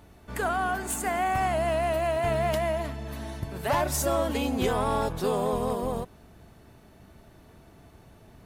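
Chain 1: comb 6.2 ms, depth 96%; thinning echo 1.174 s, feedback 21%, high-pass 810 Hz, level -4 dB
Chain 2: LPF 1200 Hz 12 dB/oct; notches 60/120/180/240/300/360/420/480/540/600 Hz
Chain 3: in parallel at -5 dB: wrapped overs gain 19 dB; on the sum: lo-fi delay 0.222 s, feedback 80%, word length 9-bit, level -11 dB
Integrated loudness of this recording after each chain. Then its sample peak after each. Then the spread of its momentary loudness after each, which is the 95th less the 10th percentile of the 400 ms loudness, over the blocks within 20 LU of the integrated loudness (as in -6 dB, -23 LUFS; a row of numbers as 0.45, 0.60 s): -25.0, -29.0, -24.0 LUFS; -10.0, -15.5, -11.5 dBFS; 13, 10, 15 LU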